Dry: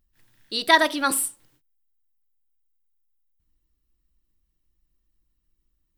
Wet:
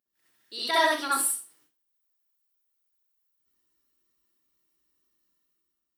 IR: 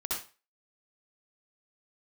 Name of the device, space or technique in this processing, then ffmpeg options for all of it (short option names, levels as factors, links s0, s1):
far laptop microphone: -filter_complex "[1:a]atrim=start_sample=2205[s0];[0:a][s0]afir=irnorm=-1:irlink=0,highpass=170,dynaudnorm=f=120:g=9:m=2.82,bass=f=250:g=-8,treble=f=4000:g=3,volume=0.355"